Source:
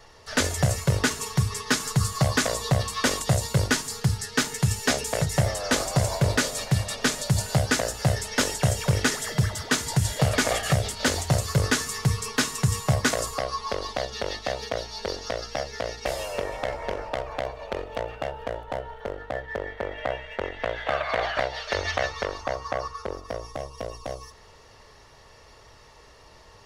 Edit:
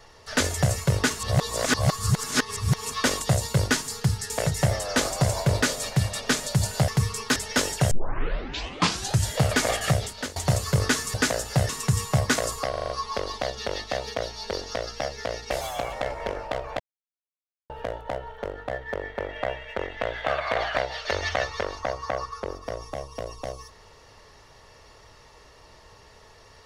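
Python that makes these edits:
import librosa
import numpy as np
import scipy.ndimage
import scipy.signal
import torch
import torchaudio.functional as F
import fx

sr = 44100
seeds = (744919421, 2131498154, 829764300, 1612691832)

y = fx.edit(x, sr, fx.reverse_span(start_s=1.19, length_s=1.73),
    fx.cut(start_s=4.3, length_s=0.75),
    fx.swap(start_s=7.63, length_s=0.55, other_s=11.96, other_length_s=0.48),
    fx.tape_start(start_s=8.73, length_s=1.35),
    fx.fade_out_to(start_s=10.76, length_s=0.42, floor_db=-19.0),
    fx.stutter(start_s=13.44, slice_s=0.04, count=6),
    fx.speed_span(start_s=16.16, length_s=0.39, speed=1.23),
    fx.silence(start_s=17.42, length_s=0.9), tone=tone)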